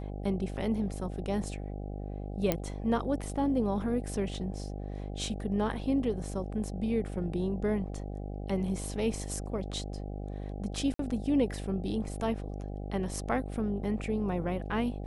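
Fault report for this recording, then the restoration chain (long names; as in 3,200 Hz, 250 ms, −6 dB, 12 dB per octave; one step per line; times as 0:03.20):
mains buzz 50 Hz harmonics 16 −38 dBFS
0:02.52: click −12 dBFS
0:10.94–0:10.99: drop-out 53 ms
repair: click removal
hum removal 50 Hz, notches 16
repair the gap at 0:10.94, 53 ms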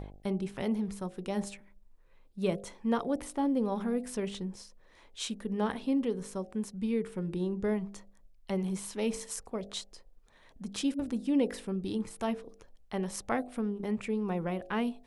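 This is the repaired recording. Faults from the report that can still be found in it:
none of them is left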